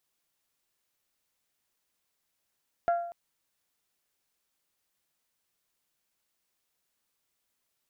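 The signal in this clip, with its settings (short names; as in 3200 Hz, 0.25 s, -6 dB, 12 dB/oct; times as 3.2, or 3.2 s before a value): glass hit bell, length 0.24 s, lowest mode 689 Hz, decay 0.72 s, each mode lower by 11 dB, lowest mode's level -20.5 dB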